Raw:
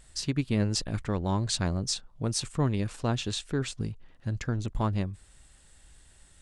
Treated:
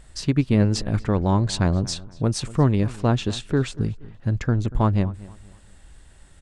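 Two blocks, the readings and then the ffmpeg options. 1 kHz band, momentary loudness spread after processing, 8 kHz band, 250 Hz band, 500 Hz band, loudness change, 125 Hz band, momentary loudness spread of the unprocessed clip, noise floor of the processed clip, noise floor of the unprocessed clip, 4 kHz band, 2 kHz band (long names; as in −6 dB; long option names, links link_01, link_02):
+7.5 dB, 8 LU, 0.0 dB, +8.5 dB, +8.0 dB, +7.5 dB, +8.5 dB, 8 LU, −50 dBFS, −58 dBFS, +1.5 dB, +5.5 dB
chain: -filter_complex "[0:a]highshelf=frequency=2600:gain=-9.5,asplit=2[link_01][link_02];[link_02]adelay=237,lowpass=frequency=3100:poles=1,volume=-19.5dB,asplit=2[link_03][link_04];[link_04]adelay=237,lowpass=frequency=3100:poles=1,volume=0.34,asplit=2[link_05][link_06];[link_06]adelay=237,lowpass=frequency=3100:poles=1,volume=0.34[link_07];[link_03][link_05][link_07]amix=inputs=3:normalize=0[link_08];[link_01][link_08]amix=inputs=2:normalize=0,volume=8.5dB"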